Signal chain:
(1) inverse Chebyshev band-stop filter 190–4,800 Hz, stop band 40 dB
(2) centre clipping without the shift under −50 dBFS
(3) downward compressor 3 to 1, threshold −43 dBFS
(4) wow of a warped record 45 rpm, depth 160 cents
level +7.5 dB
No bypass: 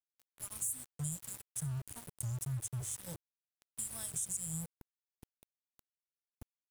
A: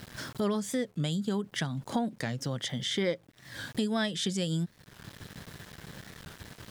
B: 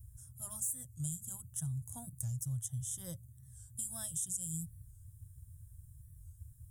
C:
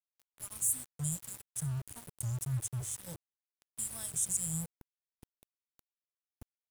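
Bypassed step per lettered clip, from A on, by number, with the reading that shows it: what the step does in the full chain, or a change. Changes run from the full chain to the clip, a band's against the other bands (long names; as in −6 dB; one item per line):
1, 8 kHz band −24.5 dB
2, distortion level −12 dB
3, average gain reduction 2.0 dB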